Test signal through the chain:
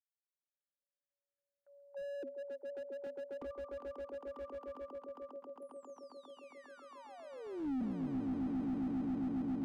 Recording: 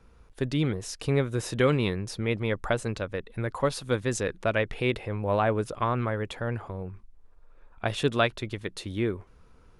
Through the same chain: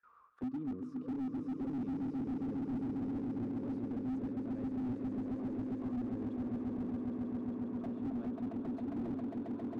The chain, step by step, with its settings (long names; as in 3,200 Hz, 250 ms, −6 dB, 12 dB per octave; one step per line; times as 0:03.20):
noise gate with hold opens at −50 dBFS
dynamic equaliser 1,100 Hz, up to +5 dB, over −40 dBFS, Q 5.1
reversed playback
downward compressor 8 to 1, threshold −34 dBFS
reversed playback
envelope filter 260–1,700 Hz, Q 21, down, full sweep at −38 dBFS
on a send: echo that builds up and dies away 135 ms, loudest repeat 8, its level −7.5 dB
on the sum: slew-rate limiting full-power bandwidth 0.68 Hz
level +17 dB